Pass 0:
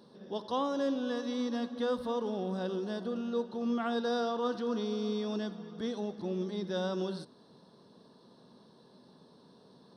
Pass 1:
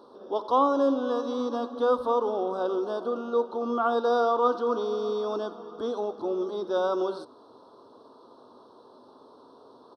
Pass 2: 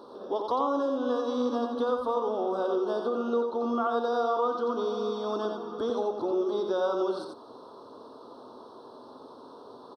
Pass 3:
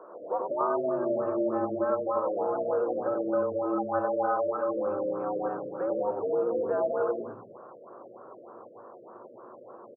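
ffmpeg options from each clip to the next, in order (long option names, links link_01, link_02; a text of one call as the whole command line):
ffmpeg -i in.wav -af "firequalizer=gain_entry='entry(110,0);entry(170,-16);entry(270,7);entry(1300,14);entry(1900,-16);entry(3200,0);entry(8400,-2)':delay=0.05:min_phase=1" out.wav
ffmpeg -i in.wav -af "acompressor=threshold=-32dB:ratio=3,aecho=1:1:89:0.562,volume=4dB" out.wav
ffmpeg -i in.wav -filter_complex "[0:a]asplit=5[link_01][link_02][link_03][link_04][link_05];[link_02]adelay=91,afreqshift=-120,volume=-10.5dB[link_06];[link_03]adelay=182,afreqshift=-240,volume=-19.1dB[link_07];[link_04]adelay=273,afreqshift=-360,volume=-27.8dB[link_08];[link_05]adelay=364,afreqshift=-480,volume=-36.4dB[link_09];[link_01][link_06][link_07][link_08][link_09]amix=inputs=5:normalize=0,afreqshift=98,afftfilt=real='re*lt(b*sr/1024,630*pow(2800/630,0.5+0.5*sin(2*PI*3.3*pts/sr)))':imag='im*lt(b*sr/1024,630*pow(2800/630,0.5+0.5*sin(2*PI*3.3*pts/sr)))':win_size=1024:overlap=0.75" out.wav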